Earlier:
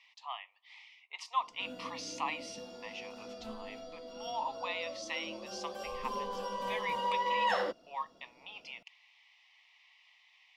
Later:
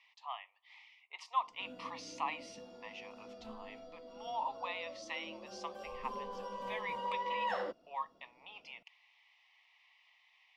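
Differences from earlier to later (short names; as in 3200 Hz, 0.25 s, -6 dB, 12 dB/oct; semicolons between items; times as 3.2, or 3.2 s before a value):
background -4.5 dB; master: add high shelf 2700 Hz -8.5 dB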